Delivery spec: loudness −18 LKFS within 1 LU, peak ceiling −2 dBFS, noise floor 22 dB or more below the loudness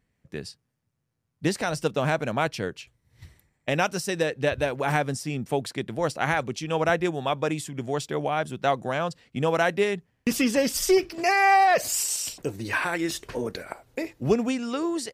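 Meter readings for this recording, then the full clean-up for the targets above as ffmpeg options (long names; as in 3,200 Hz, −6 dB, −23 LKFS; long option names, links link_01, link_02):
integrated loudness −26.0 LKFS; sample peak −9.0 dBFS; target loudness −18.0 LKFS
→ -af "volume=8dB,alimiter=limit=-2dB:level=0:latency=1"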